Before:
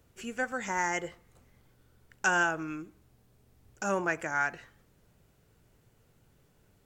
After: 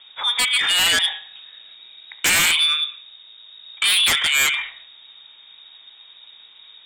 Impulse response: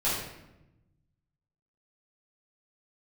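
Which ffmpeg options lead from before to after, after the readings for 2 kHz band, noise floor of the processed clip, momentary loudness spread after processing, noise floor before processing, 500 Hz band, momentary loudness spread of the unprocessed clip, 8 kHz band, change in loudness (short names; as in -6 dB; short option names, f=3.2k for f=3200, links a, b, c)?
+10.5 dB, -48 dBFS, 10 LU, -67 dBFS, -3.5 dB, 14 LU, +19.5 dB, +14.5 dB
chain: -filter_complex "[0:a]lowpass=f=3.2k:t=q:w=0.5098,lowpass=f=3.2k:t=q:w=0.6013,lowpass=f=3.2k:t=q:w=0.9,lowpass=f=3.2k:t=q:w=2.563,afreqshift=-3800,asplit=2[a][b];[1:a]atrim=start_sample=2205,afade=t=out:st=0.29:d=0.01,atrim=end_sample=13230[c];[b][c]afir=irnorm=-1:irlink=0,volume=-19dB[d];[a][d]amix=inputs=2:normalize=0,aeval=exprs='0.211*sin(PI/2*5.01*val(0)/0.211)':c=same"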